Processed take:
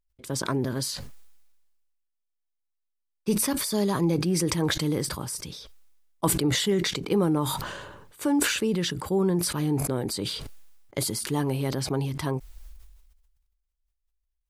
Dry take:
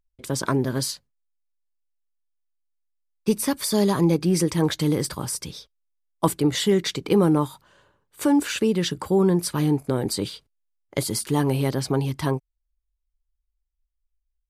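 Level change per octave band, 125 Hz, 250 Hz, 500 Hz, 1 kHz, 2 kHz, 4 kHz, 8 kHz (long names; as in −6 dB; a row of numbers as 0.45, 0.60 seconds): −3.5, −4.5, −4.5, −3.5, +0.5, −0.5, 0.0 decibels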